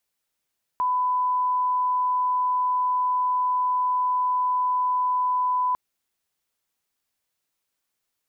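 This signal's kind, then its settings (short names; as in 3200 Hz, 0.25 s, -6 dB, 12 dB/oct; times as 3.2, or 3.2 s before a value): line-up tone -20 dBFS 4.95 s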